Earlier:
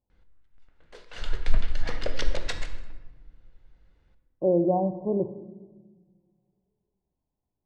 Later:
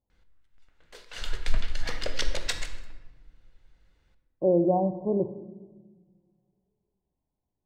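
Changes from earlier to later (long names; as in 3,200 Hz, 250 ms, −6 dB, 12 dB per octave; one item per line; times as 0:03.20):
background: add tilt shelving filter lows −3.5 dB, about 1,400 Hz
master: remove high-frequency loss of the air 52 metres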